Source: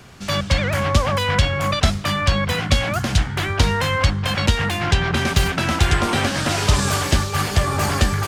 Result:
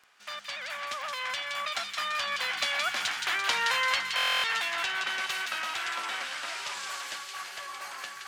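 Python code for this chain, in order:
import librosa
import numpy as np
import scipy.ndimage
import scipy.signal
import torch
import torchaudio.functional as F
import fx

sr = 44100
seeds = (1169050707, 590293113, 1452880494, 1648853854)

p1 = fx.doppler_pass(x, sr, speed_mps=13, closest_m=13.0, pass_at_s=3.53)
p2 = scipy.signal.sosfilt(scipy.signal.butter(2, 1300.0, 'highpass', fs=sr, output='sos'), p1)
p3 = fx.high_shelf(p2, sr, hz=3000.0, db=-10.5)
p4 = np.clip(p3, -10.0 ** (-29.5 / 20.0), 10.0 ** (-29.5 / 20.0))
p5 = p3 + (p4 * librosa.db_to_amplitude(-11.0))
p6 = fx.dmg_crackle(p5, sr, seeds[0], per_s=16.0, level_db=-42.0)
p7 = p6 + fx.echo_wet_highpass(p6, sr, ms=170, feedback_pct=57, hz=2200.0, wet_db=-3.5, dry=0)
y = fx.buffer_glitch(p7, sr, at_s=(4.16,), block=1024, repeats=11)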